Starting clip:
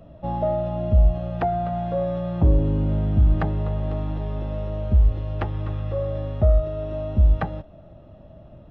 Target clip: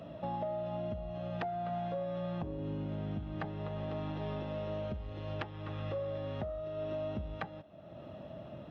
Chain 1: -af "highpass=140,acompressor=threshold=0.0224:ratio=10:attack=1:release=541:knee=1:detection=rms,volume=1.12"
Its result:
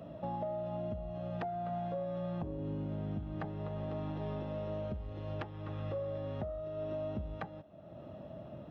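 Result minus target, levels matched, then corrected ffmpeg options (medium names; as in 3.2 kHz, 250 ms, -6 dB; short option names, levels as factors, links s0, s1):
4 kHz band -5.5 dB
-af "highpass=140,acompressor=threshold=0.0224:ratio=10:attack=1:release=541:knee=1:detection=rms,equalizer=f=3100:w=0.5:g=6,volume=1.12"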